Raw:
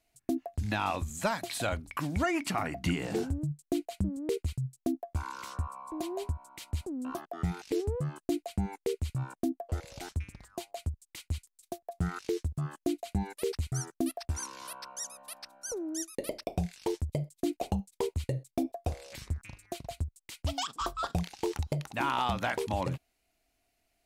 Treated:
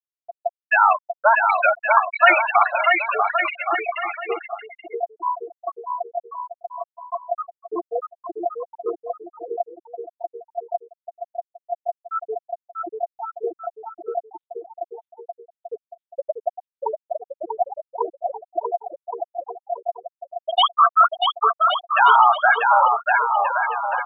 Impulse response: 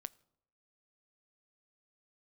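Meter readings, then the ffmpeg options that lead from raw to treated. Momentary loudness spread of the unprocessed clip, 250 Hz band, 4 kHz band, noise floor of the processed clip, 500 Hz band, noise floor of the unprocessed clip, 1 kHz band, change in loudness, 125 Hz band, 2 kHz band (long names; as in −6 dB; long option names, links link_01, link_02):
8 LU, −8.5 dB, +12.5 dB, below −85 dBFS, +10.0 dB, −82 dBFS, +19.0 dB, +14.0 dB, below −40 dB, +19.0 dB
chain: -filter_complex "[0:a]asoftclip=type=tanh:threshold=-27.5dB,highpass=880,asplit=2[link_01][link_02];[1:a]atrim=start_sample=2205,asetrate=23814,aresample=44100[link_03];[link_02][link_03]afir=irnorm=-1:irlink=0,volume=18.5dB[link_04];[link_01][link_04]amix=inputs=2:normalize=0,acrusher=bits=5:mix=0:aa=0.000001,afftfilt=real='re*gte(hypot(re,im),0.398)':imag='im*gte(hypot(re,im),0.398)':win_size=1024:overlap=0.75,aresample=8000,aresample=44100,aecho=1:1:640|1120|1480|1750|1952:0.631|0.398|0.251|0.158|0.1,volume=6.5dB"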